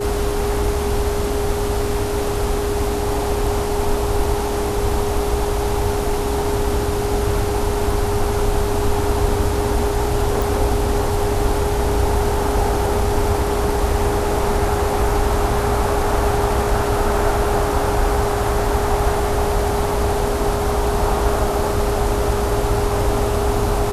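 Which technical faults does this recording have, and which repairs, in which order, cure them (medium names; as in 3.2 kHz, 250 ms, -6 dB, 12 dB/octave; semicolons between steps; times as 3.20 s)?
whine 410 Hz -22 dBFS
10.42 s: pop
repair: de-click; band-stop 410 Hz, Q 30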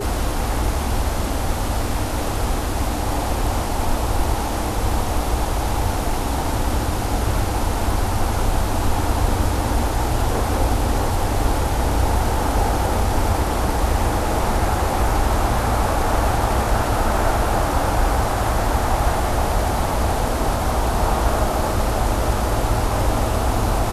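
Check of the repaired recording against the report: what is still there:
nothing left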